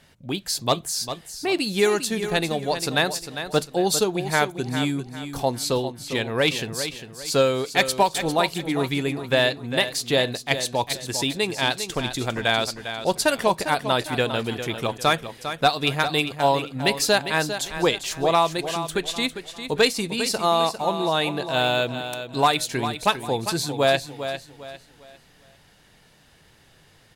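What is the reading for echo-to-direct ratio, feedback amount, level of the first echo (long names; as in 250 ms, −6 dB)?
−9.5 dB, 33%, −10.0 dB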